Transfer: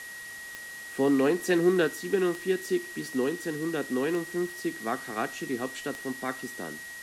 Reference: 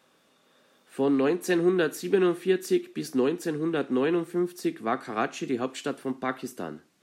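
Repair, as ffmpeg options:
-af "adeclick=t=4,bandreject=f=1900:w=30,afwtdn=0.005,asetnsamples=n=441:p=0,asendcmd='1.88 volume volume 3.5dB',volume=1"

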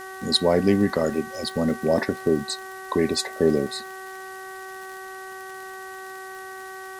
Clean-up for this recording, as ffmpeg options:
-af "adeclick=t=4,bandreject=f=379.8:t=h:w=4,bandreject=f=759.6:t=h:w=4,bandreject=f=1139.4:t=h:w=4,bandreject=f=1519.2:t=h:w=4,bandreject=f=1899:t=h:w=4,afwtdn=0.004"

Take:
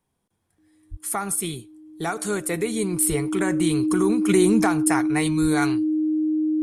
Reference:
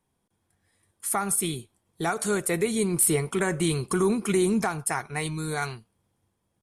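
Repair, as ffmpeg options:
-filter_complex "[0:a]bandreject=f=310:w=30,asplit=3[s0][s1][s2];[s0]afade=t=out:st=0.9:d=0.02[s3];[s1]highpass=f=140:w=0.5412,highpass=f=140:w=1.3066,afade=t=in:st=0.9:d=0.02,afade=t=out:st=1.02:d=0.02[s4];[s2]afade=t=in:st=1.02:d=0.02[s5];[s3][s4][s5]amix=inputs=3:normalize=0,asplit=3[s6][s7][s8];[s6]afade=t=out:st=3.08:d=0.02[s9];[s7]highpass=f=140:w=0.5412,highpass=f=140:w=1.3066,afade=t=in:st=3.08:d=0.02,afade=t=out:st=3.2:d=0.02[s10];[s8]afade=t=in:st=3.2:d=0.02[s11];[s9][s10][s11]amix=inputs=3:normalize=0,asplit=3[s12][s13][s14];[s12]afade=t=out:st=5.41:d=0.02[s15];[s13]highpass=f=140:w=0.5412,highpass=f=140:w=1.3066,afade=t=in:st=5.41:d=0.02,afade=t=out:st=5.53:d=0.02[s16];[s14]afade=t=in:st=5.53:d=0.02[s17];[s15][s16][s17]amix=inputs=3:normalize=0,asetnsamples=n=441:p=0,asendcmd='4.29 volume volume -4.5dB',volume=1"

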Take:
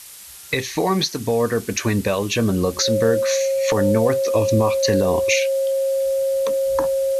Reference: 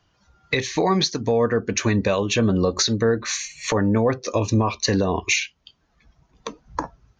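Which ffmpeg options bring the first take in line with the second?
-af "bandreject=f=540:w=30,afftdn=nr=29:nf=-33"

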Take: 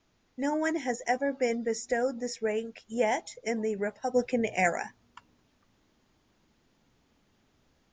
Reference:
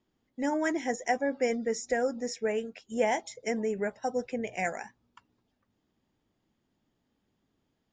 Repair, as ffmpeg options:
-af "agate=range=0.0891:threshold=0.000794,asetnsamples=n=441:p=0,asendcmd='4.14 volume volume -5.5dB',volume=1"

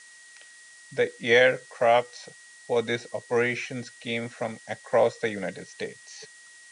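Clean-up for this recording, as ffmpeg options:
-af "bandreject=f=1900:w=30,afftdn=nr=19:nf=-50"

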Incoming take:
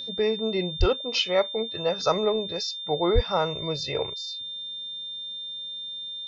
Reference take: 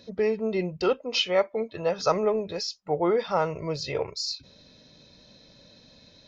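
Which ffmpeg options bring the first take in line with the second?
-filter_complex "[0:a]bandreject=f=3600:w=30,asplit=3[s0][s1][s2];[s0]afade=t=out:st=0.79:d=0.02[s3];[s1]highpass=f=140:w=0.5412,highpass=f=140:w=1.3066,afade=t=in:st=0.79:d=0.02,afade=t=out:st=0.91:d=0.02[s4];[s2]afade=t=in:st=0.91:d=0.02[s5];[s3][s4][s5]amix=inputs=3:normalize=0,asplit=3[s6][s7][s8];[s6]afade=t=out:st=3.14:d=0.02[s9];[s7]highpass=f=140:w=0.5412,highpass=f=140:w=1.3066,afade=t=in:st=3.14:d=0.02,afade=t=out:st=3.26:d=0.02[s10];[s8]afade=t=in:st=3.26:d=0.02[s11];[s9][s10][s11]amix=inputs=3:normalize=0,asetnsamples=n=441:p=0,asendcmd='4.14 volume volume 9.5dB',volume=1"

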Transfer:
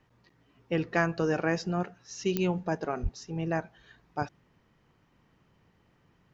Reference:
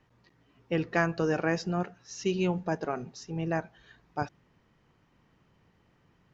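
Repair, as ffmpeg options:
-filter_complex "[0:a]adeclick=t=4,asplit=3[s0][s1][s2];[s0]afade=t=out:st=3.02:d=0.02[s3];[s1]highpass=f=140:w=0.5412,highpass=f=140:w=1.3066,afade=t=in:st=3.02:d=0.02,afade=t=out:st=3.14:d=0.02[s4];[s2]afade=t=in:st=3.14:d=0.02[s5];[s3][s4][s5]amix=inputs=3:normalize=0"

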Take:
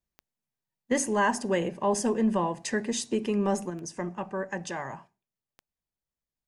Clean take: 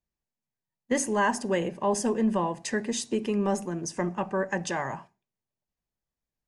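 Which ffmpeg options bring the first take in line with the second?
-af "adeclick=t=4,asetnsamples=n=441:p=0,asendcmd='3.7 volume volume 4.5dB',volume=1"

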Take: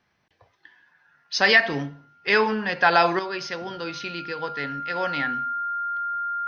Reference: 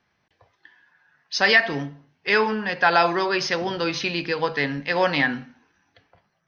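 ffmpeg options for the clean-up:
-af "bandreject=f=1400:w=30,asetnsamples=n=441:p=0,asendcmd='3.19 volume volume 7.5dB',volume=1"

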